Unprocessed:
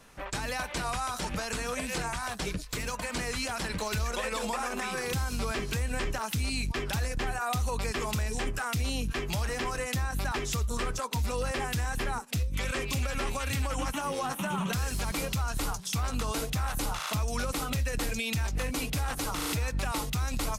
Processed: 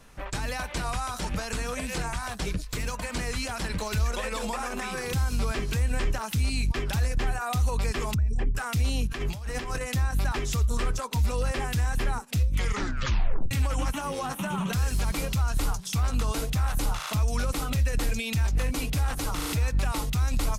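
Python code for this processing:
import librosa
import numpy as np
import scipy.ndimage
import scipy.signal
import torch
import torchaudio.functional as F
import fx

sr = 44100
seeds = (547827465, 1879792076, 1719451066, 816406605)

y = fx.envelope_sharpen(x, sr, power=2.0, at=(8.14, 8.55))
y = fx.over_compress(y, sr, threshold_db=-34.0, ratio=-0.5, at=(9.07, 9.81))
y = fx.edit(y, sr, fx.tape_stop(start_s=12.56, length_s=0.95), tone=tone)
y = fx.low_shelf(y, sr, hz=120.0, db=8.5)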